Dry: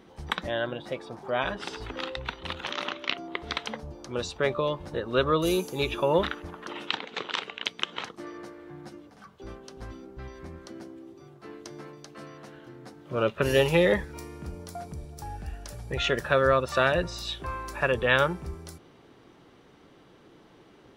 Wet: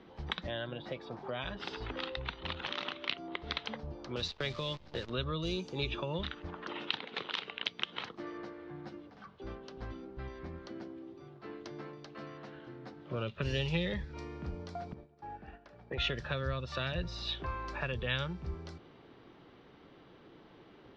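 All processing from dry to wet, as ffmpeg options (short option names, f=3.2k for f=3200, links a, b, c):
-filter_complex "[0:a]asettb=1/sr,asplit=3[a][b][c];[a]atrim=end=4.164[d];[b]atrim=start=4.16:end=5.1,asetpts=PTS-STARTPTS,afade=t=in:d=0.004:c=qsin,afade=t=out:st=0.936:d=0.004:c=qsin,agate=range=-8dB:threshold=-37dB:ratio=16:release=100:detection=peak,equalizer=f=3.7k:w=0.66:g=6.5,acrusher=bits=7:dc=4:mix=0:aa=0.000001[e];[c]atrim=start=5.096[f];[d][e]acrossfade=d=0.004:c1=hsin:c2=qsin[g];[g][f]acrossfade=d=0.004:c1=qsin:c2=hsin,asettb=1/sr,asplit=3[h][i][j];[h]atrim=end=14.934[k];[i]atrim=start=14.93:end=15.98,asetpts=PTS-STARTPTS,afade=t=in:d=0.004:c=qsin,afade=t=out:st=1.046:d=0.004:c=qsin,agate=range=-33dB:threshold=-35dB:ratio=3:release=100:detection=peak,acrossover=split=160 2700:gain=0.158 1 0.224[l][m][n];[l][m][n]amix=inputs=3:normalize=0[o];[j]atrim=start=15.976[p];[k][o]acrossfade=d=0.004:c1=hsin:c2=qsin[q];[q][p]acrossfade=d=0.004:c1=qsin:c2=hsin,lowpass=f=4.6k:w=0.5412,lowpass=f=4.6k:w=1.3066,acrossover=split=180|3000[r][s][t];[s]acompressor=threshold=-35dB:ratio=10[u];[r][u][t]amix=inputs=3:normalize=0,volume=-2dB"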